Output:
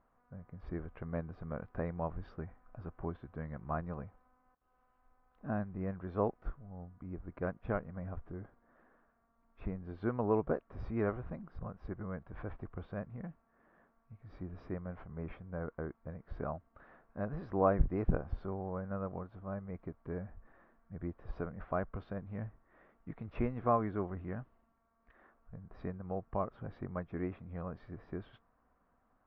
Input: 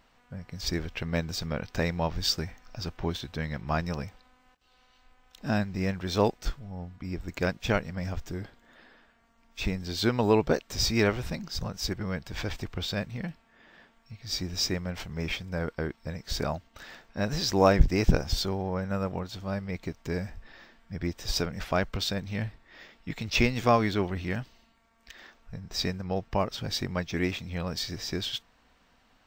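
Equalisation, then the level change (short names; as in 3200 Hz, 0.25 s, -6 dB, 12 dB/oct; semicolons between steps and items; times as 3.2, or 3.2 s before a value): ladder low-pass 1400 Hz, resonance 35%; bell 890 Hz -7.5 dB 0.21 oct; -1.5 dB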